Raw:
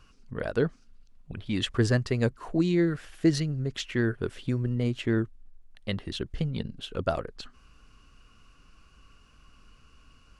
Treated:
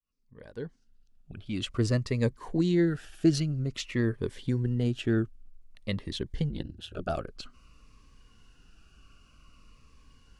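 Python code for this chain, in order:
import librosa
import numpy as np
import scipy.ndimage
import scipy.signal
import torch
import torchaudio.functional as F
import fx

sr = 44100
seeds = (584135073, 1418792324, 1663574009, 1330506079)

y = fx.fade_in_head(x, sr, length_s=2.38)
y = fx.ring_mod(y, sr, carrier_hz=84.0, at=(6.49, 7.08), fade=0.02)
y = fx.notch_cascade(y, sr, direction='falling', hz=0.52)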